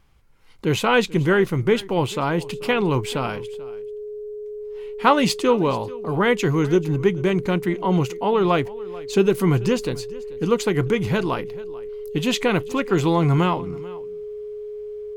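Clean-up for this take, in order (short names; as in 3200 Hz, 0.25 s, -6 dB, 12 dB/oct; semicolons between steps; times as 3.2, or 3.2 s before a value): notch 420 Hz, Q 30; inverse comb 0.437 s -20.5 dB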